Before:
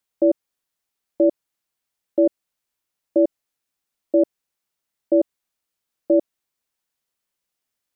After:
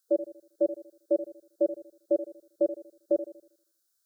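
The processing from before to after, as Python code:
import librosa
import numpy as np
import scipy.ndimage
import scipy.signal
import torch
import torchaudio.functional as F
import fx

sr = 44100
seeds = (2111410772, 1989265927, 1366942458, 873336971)

y = fx.curve_eq(x, sr, hz=(110.0, 170.0, 250.0, 410.0, 650.0, 960.0, 1500.0, 2300.0, 3900.0), db=(0, 6, -13, 4, 0, -6, 12, -19, 7))
y = fx.stretch_vocoder(y, sr, factor=0.51)
y = fx.bass_treble(y, sr, bass_db=-7, treble_db=8)
y = fx.echo_filtered(y, sr, ms=79, feedback_pct=46, hz=800.0, wet_db=-11)
y = F.gain(torch.from_numpy(y), -5.5).numpy()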